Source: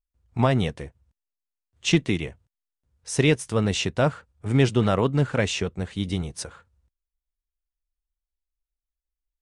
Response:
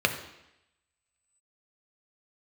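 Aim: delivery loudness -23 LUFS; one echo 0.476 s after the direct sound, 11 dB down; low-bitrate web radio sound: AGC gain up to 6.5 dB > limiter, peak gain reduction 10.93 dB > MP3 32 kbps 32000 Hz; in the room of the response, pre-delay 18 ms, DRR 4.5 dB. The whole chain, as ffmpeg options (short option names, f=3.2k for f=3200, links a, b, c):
-filter_complex "[0:a]aecho=1:1:476:0.282,asplit=2[a][b];[1:a]atrim=start_sample=2205,adelay=18[c];[b][c]afir=irnorm=-1:irlink=0,volume=-18dB[d];[a][d]amix=inputs=2:normalize=0,dynaudnorm=m=6.5dB,alimiter=limit=-17dB:level=0:latency=1,volume=5.5dB" -ar 32000 -c:a libmp3lame -b:a 32k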